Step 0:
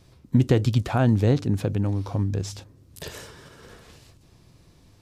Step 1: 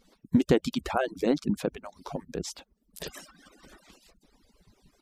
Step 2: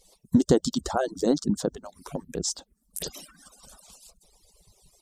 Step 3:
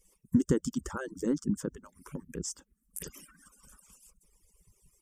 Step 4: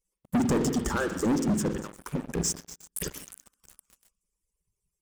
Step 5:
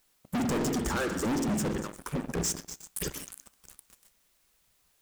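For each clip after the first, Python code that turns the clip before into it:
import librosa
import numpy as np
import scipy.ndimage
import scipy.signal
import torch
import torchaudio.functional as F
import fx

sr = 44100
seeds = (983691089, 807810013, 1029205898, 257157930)

y1 = fx.hpss_only(x, sr, part='percussive')
y1 = fx.dereverb_blind(y1, sr, rt60_s=0.67)
y2 = fx.peak_eq(y1, sr, hz=9100.0, db=13.5, octaves=1.3)
y2 = fx.env_phaser(y2, sr, low_hz=230.0, high_hz=2400.0, full_db=-31.5)
y2 = y2 * librosa.db_to_amplitude(2.5)
y3 = fx.fixed_phaser(y2, sr, hz=1700.0, stages=4)
y3 = y3 * librosa.db_to_amplitude(-3.5)
y4 = fx.echo_stepped(y3, sr, ms=119, hz=3200.0, octaves=0.7, feedback_pct=70, wet_db=-9.5)
y4 = fx.rev_spring(y4, sr, rt60_s=1.0, pass_ms=(47,), chirp_ms=40, drr_db=9.0)
y4 = fx.leveller(y4, sr, passes=5)
y4 = y4 * librosa.db_to_amplitude(-7.5)
y5 = fx.quant_dither(y4, sr, seeds[0], bits=12, dither='triangular')
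y5 = np.clip(y5, -10.0 ** (-29.5 / 20.0), 10.0 ** (-29.5 / 20.0))
y5 = fx.comb_fb(y5, sr, f0_hz=68.0, decay_s=0.29, harmonics='all', damping=0.0, mix_pct=30)
y5 = y5 * librosa.db_to_amplitude(4.5)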